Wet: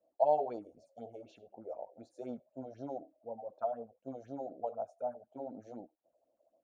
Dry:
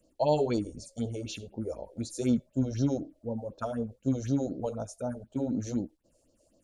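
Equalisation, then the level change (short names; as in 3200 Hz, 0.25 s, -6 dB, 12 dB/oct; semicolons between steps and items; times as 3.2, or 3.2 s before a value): band-pass 720 Hz, Q 5; +4.0 dB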